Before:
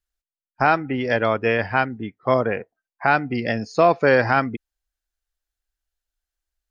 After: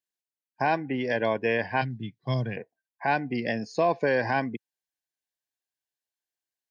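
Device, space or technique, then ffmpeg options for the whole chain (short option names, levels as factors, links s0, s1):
PA system with an anti-feedback notch: -filter_complex "[0:a]asettb=1/sr,asplit=3[s0][s1][s2];[s0]atrim=end=1.814[s3];[s1]atrim=start=1.81:end=2.57,asetpts=PTS-STARTPTS,afade=t=in:d=0.004:c=qsin,afade=t=out:st=0.756:d=0.004:c=qsin,equalizer=f=125:t=o:w=1:g=11,equalizer=f=250:t=o:w=1:g=-3,equalizer=f=500:t=o:w=1:g=-11,equalizer=f=1000:t=o:w=1:g=-8,equalizer=f=2000:t=o:w=1:g=-6,equalizer=f=4000:t=o:w=1:g=10[s4];[s2]atrim=start=2.566[s5];[s3][s4]acrossfade=d=0.004:c1=hsin:c2=qsin[s6];[s6][s5]acrossfade=d=0.004:c1=qsin:c2=hsin,highpass=f=120:w=0.5412,highpass=f=120:w=1.3066,asuperstop=centerf=1300:order=8:qfactor=3.8,alimiter=limit=0.335:level=0:latency=1:release=56,volume=0.596"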